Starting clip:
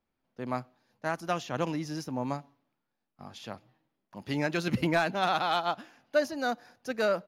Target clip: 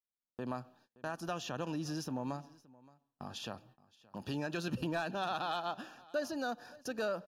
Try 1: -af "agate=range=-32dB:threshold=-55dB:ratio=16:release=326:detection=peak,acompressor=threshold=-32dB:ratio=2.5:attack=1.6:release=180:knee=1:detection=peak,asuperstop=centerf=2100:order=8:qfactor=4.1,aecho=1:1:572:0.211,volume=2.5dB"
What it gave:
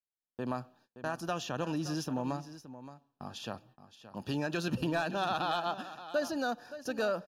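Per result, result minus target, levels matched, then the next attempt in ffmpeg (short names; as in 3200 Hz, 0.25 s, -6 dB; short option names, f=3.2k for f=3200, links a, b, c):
echo-to-direct +9 dB; compressor: peak gain reduction -4 dB
-af "agate=range=-32dB:threshold=-55dB:ratio=16:release=326:detection=peak,acompressor=threshold=-32dB:ratio=2.5:attack=1.6:release=180:knee=1:detection=peak,asuperstop=centerf=2100:order=8:qfactor=4.1,aecho=1:1:572:0.075,volume=2.5dB"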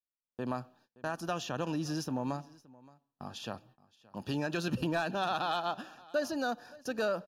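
compressor: peak gain reduction -4 dB
-af "agate=range=-32dB:threshold=-55dB:ratio=16:release=326:detection=peak,acompressor=threshold=-38.5dB:ratio=2.5:attack=1.6:release=180:knee=1:detection=peak,asuperstop=centerf=2100:order=8:qfactor=4.1,aecho=1:1:572:0.075,volume=2.5dB"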